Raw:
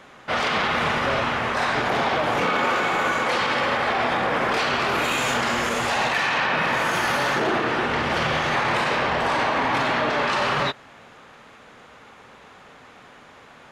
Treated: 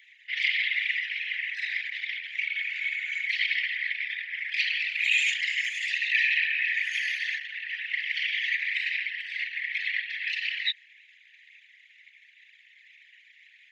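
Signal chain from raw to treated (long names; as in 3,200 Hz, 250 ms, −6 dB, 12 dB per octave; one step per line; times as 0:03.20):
spectral envelope exaggerated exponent 2
Butterworth high-pass 1,900 Hz 96 dB per octave
level +5 dB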